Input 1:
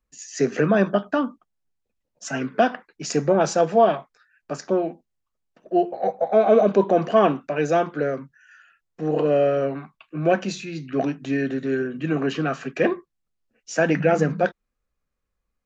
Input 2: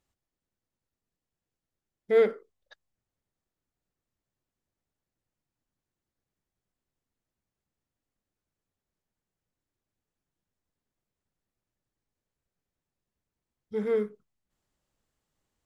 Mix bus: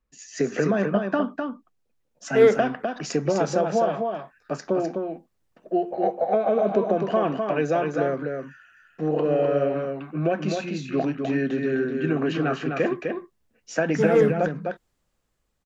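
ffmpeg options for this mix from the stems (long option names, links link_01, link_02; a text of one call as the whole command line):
ffmpeg -i stem1.wav -i stem2.wav -filter_complex "[0:a]lowpass=frequency=3500:poles=1,acompressor=threshold=-20dB:ratio=6,volume=1dB,asplit=2[link_01][link_02];[link_02]volume=-5dB[link_03];[1:a]dynaudnorm=framelen=730:gausssize=5:maxgain=9.5dB,adelay=250,volume=-1.5dB[link_04];[link_03]aecho=0:1:254:1[link_05];[link_01][link_04][link_05]amix=inputs=3:normalize=0" out.wav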